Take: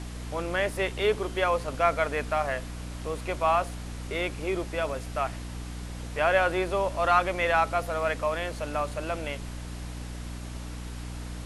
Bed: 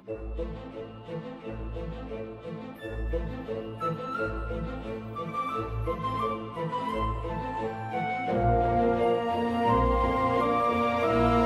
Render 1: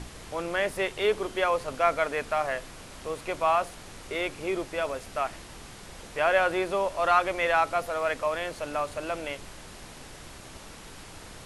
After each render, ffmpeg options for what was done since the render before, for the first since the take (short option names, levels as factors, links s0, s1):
-af "bandreject=f=60:t=h:w=4,bandreject=f=120:t=h:w=4,bandreject=f=180:t=h:w=4,bandreject=f=240:t=h:w=4,bandreject=f=300:t=h:w=4"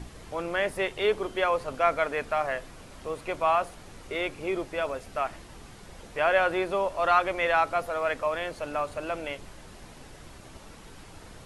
-af "afftdn=nr=6:nf=-46"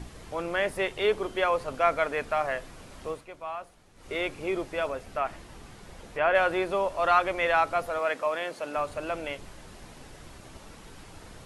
-filter_complex "[0:a]asettb=1/sr,asplit=3[s0][s1][s2];[s0]atrim=end=4.884[s3];[s1]atrim=start=4.88:end=6.35,asetpts=PTS-STARTPTS,afade=t=in:d=0.004:c=qsin,afade=t=out:st=1.466:d=0.004:c=qsin,acrossover=split=3200[s4][s5];[s5]acompressor=threshold=0.002:ratio=4:attack=1:release=60[s6];[s4][s6]amix=inputs=2:normalize=0[s7];[s2]atrim=start=6.346[s8];[s3][s7]acrossfade=d=0.004:c1=hsin:c2=qsin[s9];[s9][s8]acrossfade=d=0.004:c1=qsin:c2=hsin,asettb=1/sr,asplit=3[s10][s11][s12];[s10]atrim=end=7.994[s13];[s11]atrim=start=7.99:end=8.76,asetpts=PTS-STARTPTS,afade=t=in:d=0.004:c=qsin,afade=t=out:st=0.766:d=0.004:c=qsin,highpass=210[s14];[s12]atrim=start=8.756[s15];[s13][s14]acrossfade=d=0.004:c1=hsin:c2=qsin[s16];[s16][s15]acrossfade=d=0.004:c1=qsin:c2=hsin,asplit=3[s17][s18][s19];[s17]atrim=end=3.26,asetpts=PTS-STARTPTS,afade=t=out:st=3.09:d=0.17:silence=0.237137[s20];[s18]atrim=start=3.26:end=3.95,asetpts=PTS-STARTPTS,volume=0.237[s21];[s19]atrim=start=3.95,asetpts=PTS-STARTPTS,afade=t=in:d=0.17:silence=0.237137[s22];[s20][s21][s22]concat=n=3:v=0:a=1"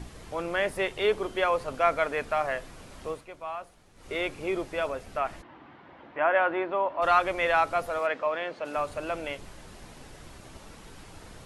-filter_complex "[0:a]asplit=3[s0][s1][s2];[s0]afade=t=out:st=5.41:d=0.02[s3];[s1]highpass=180,equalizer=f=190:t=q:w=4:g=-7,equalizer=f=300:t=q:w=4:g=6,equalizer=f=440:t=q:w=4:g=-8,equalizer=f=950:t=q:w=4:g=4,equalizer=f=2500:t=q:w=4:g=-4,lowpass=f=2800:w=0.5412,lowpass=f=2800:w=1.3066,afade=t=in:st=5.41:d=0.02,afade=t=out:st=7.01:d=0.02[s4];[s2]afade=t=in:st=7.01:d=0.02[s5];[s3][s4][s5]amix=inputs=3:normalize=0,asplit=3[s6][s7][s8];[s6]afade=t=out:st=8.06:d=0.02[s9];[s7]lowpass=3600,afade=t=in:st=8.06:d=0.02,afade=t=out:st=8.64:d=0.02[s10];[s8]afade=t=in:st=8.64:d=0.02[s11];[s9][s10][s11]amix=inputs=3:normalize=0"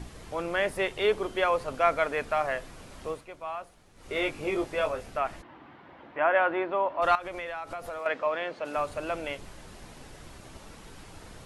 -filter_complex "[0:a]asettb=1/sr,asplit=3[s0][s1][s2];[s0]atrim=end=4.144[s3];[s1]atrim=start=4.14:end=5.1,asetpts=PTS-STARTPTS,afade=t=in:d=0.004:c=qsin,afade=t=out:st=0.956:d=0.004:c=qsin,asplit=2[s4][s5];[s5]adelay=20,volume=0.631[s6];[s4][s6]amix=inputs=2:normalize=0,atrim=end_sample=42336[s7];[s2]atrim=start=5.096[s8];[s3][s7]acrossfade=d=0.004:c1=hsin:c2=qsin[s9];[s9][s8]acrossfade=d=0.004:c1=qsin:c2=hsin,asettb=1/sr,asplit=3[s10][s11][s12];[s10]atrim=end=7.154[s13];[s11]atrim=start=7.15:end=8.06,asetpts=PTS-STARTPTS,afade=t=in:d=0.004:c=qsin,afade=t=out:st=0.906:d=0.004:c=qsin,acompressor=threshold=0.0251:ratio=10:attack=3.2:release=140:knee=1:detection=peak[s14];[s12]atrim=start=8.056[s15];[s13][s14]acrossfade=d=0.004:c1=hsin:c2=qsin[s16];[s16][s15]acrossfade=d=0.004:c1=qsin:c2=hsin"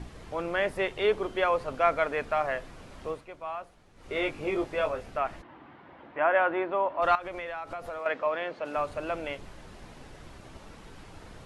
-af "lowpass=f=3900:p=1"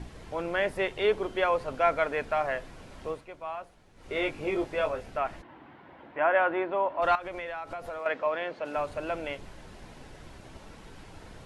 -af "bandreject=f=1200:w=16"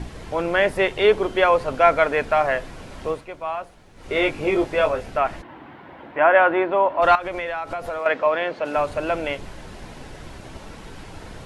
-af "volume=2.82"